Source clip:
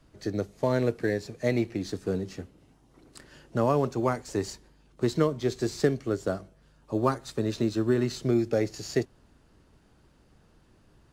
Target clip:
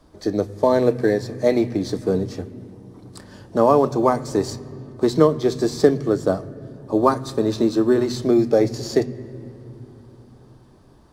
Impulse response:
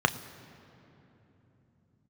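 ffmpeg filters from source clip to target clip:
-filter_complex "[0:a]bandreject=f=1.4k:w=13,asplit=2[a][b];[1:a]atrim=start_sample=2205,lowpass=8.5k[c];[b][c]afir=irnorm=-1:irlink=0,volume=-16.5dB[d];[a][d]amix=inputs=2:normalize=0,volume=6dB"

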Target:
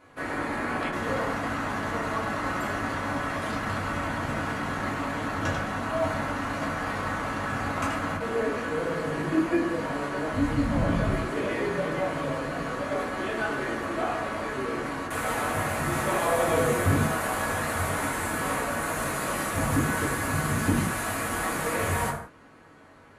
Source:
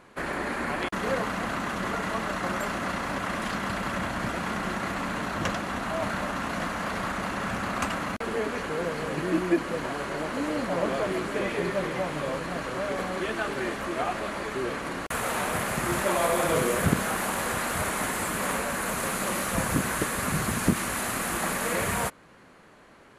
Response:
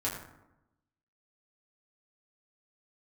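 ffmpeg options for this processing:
-filter_complex "[0:a]asplit=3[a][b][c];[a]afade=t=out:st=10.32:d=0.02[d];[b]asubboost=boost=11:cutoff=120,afade=t=in:st=10.32:d=0.02,afade=t=out:st=11.09:d=0.02[e];[c]afade=t=in:st=11.09:d=0.02[f];[d][e][f]amix=inputs=3:normalize=0[g];[1:a]atrim=start_sample=2205,afade=t=out:st=0.25:d=0.01,atrim=end_sample=11466[h];[g][h]afir=irnorm=-1:irlink=0,volume=-5dB"

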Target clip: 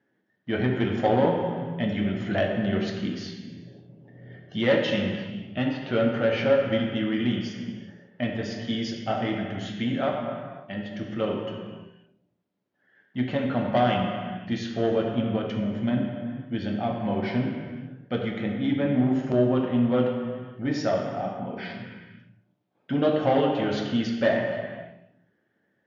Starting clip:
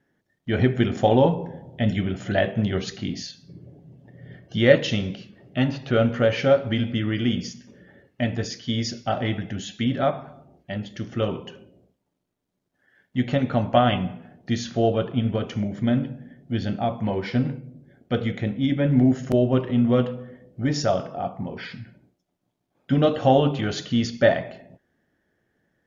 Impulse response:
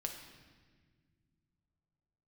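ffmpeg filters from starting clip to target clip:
-filter_complex "[0:a]aresample=16000,asoftclip=type=tanh:threshold=-13dB,aresample=44100,highpass=160,lowpass=3.9k[a];[1:a]atrim=start_sample=2205,afade=t=out:st=0.4:d=0.01,atrim=end_sample=18081,asetrate=27342,aresample=44100[b];[a][b]afir=irnorm=-1:irlink=0,volume=-2.5dB"

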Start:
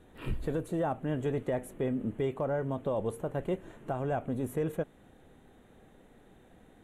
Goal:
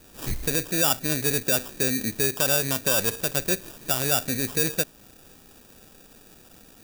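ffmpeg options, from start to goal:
-af "acrusher=samples=21:mix=1:aa=0.000001,crystalizer=i=4.5:c=0,volume=3.5dB"

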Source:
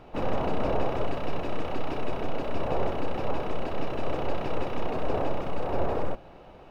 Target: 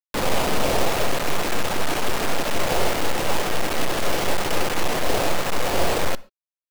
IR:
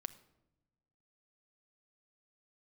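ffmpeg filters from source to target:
-filter_complex "[0:a]acrusher=bits=4:mix=0:aa=0.000001,asplit=2[a][b];[1:a]atrim=start_sample=2205,afade=t=out:st=0.19:d=0.01,atrim=end_sample=8820,lowshelf=f=380:g=-9[c];[b][c]afir=irnorm=-1:irlink=0,volume=4dB[d];[a][d]amix=inputs=2:normalize=0"

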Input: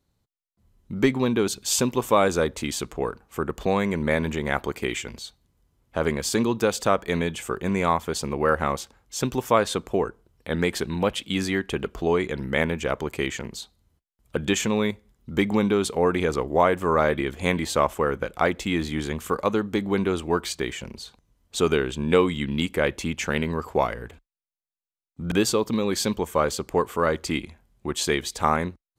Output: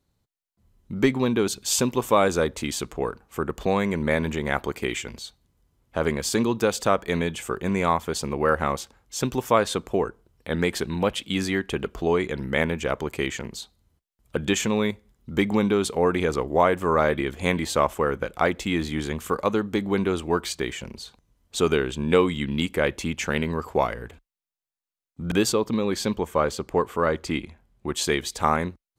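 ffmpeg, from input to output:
-filter_complex "[0:a]asettb=1/sr,asplit=3[a][b][c];[a]atrim=end=25.524[d];[b]atrim=start=25.52:end=27.87,asetpts=PTS-STARTPTS,afade=t=in:d=0.004:c=qsin,afade=t=out:st=2.346:d=0.004:c=qsin,highshelf=f=4.6k:g=-7[e];[c]atrim=start=27.866[f];[d][e]acrossfade=d=0.004:c1=hsin:c2=qsin[g];[g][f]acrossfade=d=0.004:c1=qsin:c2=hsin"

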